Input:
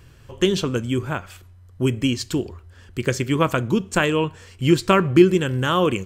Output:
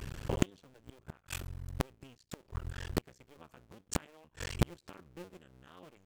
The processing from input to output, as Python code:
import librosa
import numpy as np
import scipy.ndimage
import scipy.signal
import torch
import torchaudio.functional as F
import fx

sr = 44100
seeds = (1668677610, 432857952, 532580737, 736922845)

y = fx.cycle_switch(x, sr, every=2, mode='muted')
y = fx.gate_flip(y, sr, shuts_db=-20.0, range_db=-41)
y = y * 10.0 ** (7.5 / 20.0)